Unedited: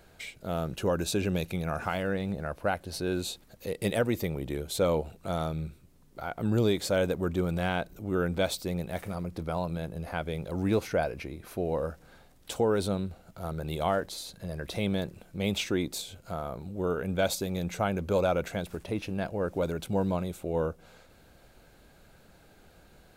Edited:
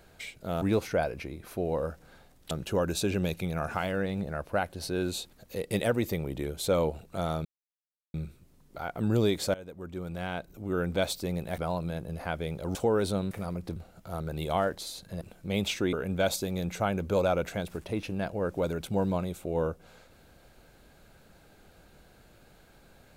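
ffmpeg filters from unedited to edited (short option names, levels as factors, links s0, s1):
-filter_complex "[0:a]asplit=11[s0][s1][s2][s3][s4][s5][s6][s7][s8][s9][s10];[s0]atrim=end=0.622[s11];[s1]atrim=start=10.618:end=12.512[s12];[s2]atrim=start=0.618:end=5.56,asetpts=PTS-STARTPTS,afade=t=out:st=4.938:d=0.004:c=hsin,apad=pad_dur=0.69[s13];[s3]atrim=start=5.56:end=6.96,asetpts=PTS-STARTPTS,afade=t=in:d=0.004:c=hsin,afade=t=out:st=1.396:d=0.004:c=hsin:silence=0.0944061[s14];[s4]atrim=start=6.96:end=9.002,asetpts=PTS-STARTPTS,afade=t=in:d=1.51:silence=0.0944061[s15];[s5]atrim=start=9.448:end=10.622[s16];[s6]atrim=start=12.508:end=13.072[s17];[s7]atrim=start=8.998:end=9.452[s18];[s8]atrim=start=13.068:end=14.522[s19];[s9]atrim=start=15.108:end=15.832[s20];[s10]atrim=start=16.918[s21];[s11][s12]acrossfade=d=0.004:c1=hsin:c2=hsin[s22];[s13][s14][s15]concat=n=3:v=0:a=1[s23];[s22][s23]acrossfade=d=0.004:c1=hsin:c2=hsin[s24];[s24][s16]acrossfade=d=0.004:c1=hsin:c2=hsin[s25];[s25][s17]acrossfade=d=0.004:c1=hsin:c2=hsin[s26];[s26][s18]acrossfade=d=0.004:c1=hsin:c2=hsin[s27];[s27][s19]acrossfade=d=0.004:c1=hsin:c2=hsin[s28];[s28][s20]acrossfade=d=0.004:c1=hsin:c2=hsin[s29];[s29][s21]acrossfade=d=0.004:c1=hsin:c2=hsin"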